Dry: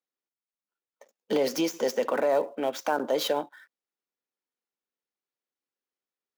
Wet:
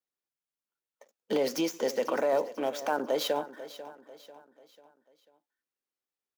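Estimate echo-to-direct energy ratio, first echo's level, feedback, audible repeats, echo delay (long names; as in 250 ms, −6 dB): −14.0 dB, −15.0 dB, 43%, 3, 493 ms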